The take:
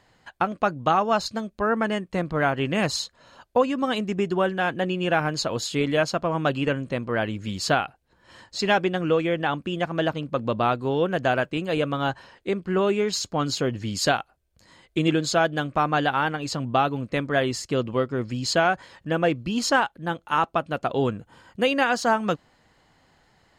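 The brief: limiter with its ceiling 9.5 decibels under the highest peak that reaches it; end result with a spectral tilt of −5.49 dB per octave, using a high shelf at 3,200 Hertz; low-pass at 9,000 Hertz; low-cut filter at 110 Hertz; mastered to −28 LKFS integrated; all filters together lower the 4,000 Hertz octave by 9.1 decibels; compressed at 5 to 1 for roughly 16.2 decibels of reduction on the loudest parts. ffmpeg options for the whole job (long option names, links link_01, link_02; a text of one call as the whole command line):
ffmpeg -i in.wav -af "highpass=110,lowpass=9000,highshelf=frequency=3200:gain=-7,equalizer=frequency=4000:width_type=o:gain=-7,acompressor=threshold=-36dB:ratio=5,volume=12dB,alimiter=limit=-16.5dB:level=0:latency=1" out.wav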